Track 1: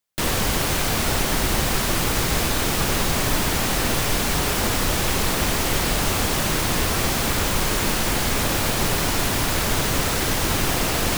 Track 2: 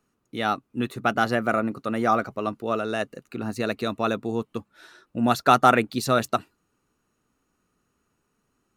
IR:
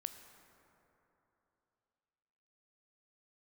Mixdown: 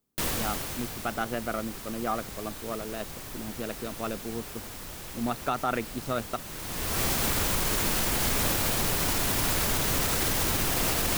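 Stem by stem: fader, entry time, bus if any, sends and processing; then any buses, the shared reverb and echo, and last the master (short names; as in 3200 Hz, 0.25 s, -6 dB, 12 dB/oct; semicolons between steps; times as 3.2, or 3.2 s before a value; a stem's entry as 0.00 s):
-5.0 dB, 0.00 s, send -19.5 dB, high shelf 9000 Hz +7 dB; auto duck -21 dB, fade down 1.20 s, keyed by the second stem
-8.0 dB, 0.00 s, no send, Wiener smoothing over 25 samples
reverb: on, RT60 3.2 s, pre-delay 13 ms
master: limiter -16.5 dBFS, peak gain reduction 5.5 dB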